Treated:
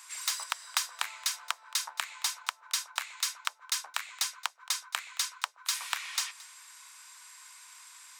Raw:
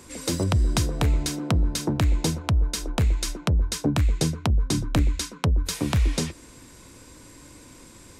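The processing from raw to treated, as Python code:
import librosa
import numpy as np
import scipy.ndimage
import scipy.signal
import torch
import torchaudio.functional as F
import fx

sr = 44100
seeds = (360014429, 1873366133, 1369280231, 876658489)

y = fx.tracing_dist(x, sr, depth_ms=0.036)
y = scipy.signal.sosfilt(scipy.signal.butter(6, 980.0, 'highpass', fs=sr, output='sos'), y)
y = y + 10.0 ** (-21.0 / 20.0) * np.pad(y, (int(222 * sr / 1000.0), 0))[:len(y)]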